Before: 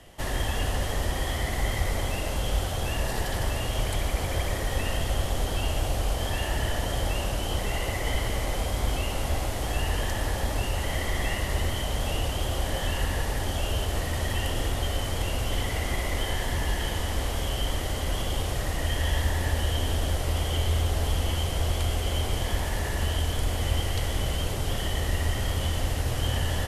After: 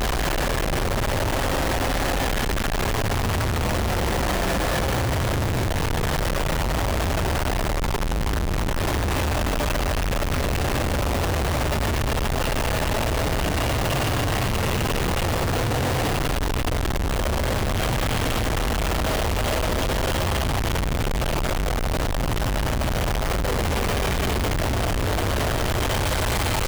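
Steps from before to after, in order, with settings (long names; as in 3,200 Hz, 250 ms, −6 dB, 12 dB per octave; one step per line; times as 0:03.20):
extreme stretch with random phases 40×, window 0.05 s, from 0:03.27
comparator with hysteresis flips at −33.5 dBFS
level +4.5 dB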